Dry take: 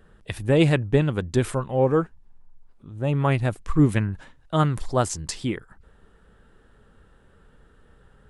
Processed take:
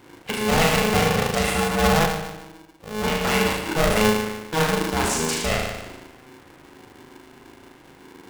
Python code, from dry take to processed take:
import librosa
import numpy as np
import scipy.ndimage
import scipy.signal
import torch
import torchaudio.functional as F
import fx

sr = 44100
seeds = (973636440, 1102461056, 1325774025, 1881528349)

p1 = fx.peak_eq(x, sr, hz=2400.0, db=15.0, octaves=0.26)
p2 = fx.cheby_harmonics(p1, sr, harmonics=(5,), levels_db=(-9,), full_scale_db=-12.5)
p3 = p2 + fx.room_flutter(p2, sr, wall_m=6.5, rt60_s=1.1, dry=0)
p4 = fx.buffer_glitch(p3, sr, at_s=(2.0,), block=256, repeats=8)
p5 = p4 * np.sign(np.sin(2.0 * np.pi * 320.0 * np.arange(len(p4)) / sr))
y = p5 * 10.0 ** (-5.5 / 20.0)